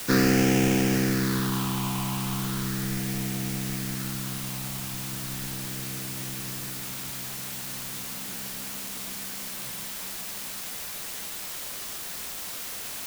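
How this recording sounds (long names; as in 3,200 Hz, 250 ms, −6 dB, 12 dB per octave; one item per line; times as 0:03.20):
aliases and images of a low sample rate 2,100 Hz, jitter 20%
phaser sweep stages 6, 0.37 Hz, lowest notch 470–1,100 Hz
a quantiser's noise floor 6 bits, dither triangular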